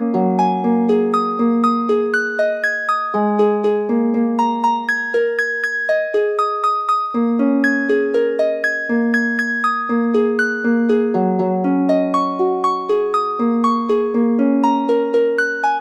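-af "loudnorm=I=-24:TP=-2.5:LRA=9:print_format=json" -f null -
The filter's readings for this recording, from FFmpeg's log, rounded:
"input_i" : "-17.0",
"input_tp" : "-4.1",
"input_lra" : "0.5",
"input_thresh" : "-27.0",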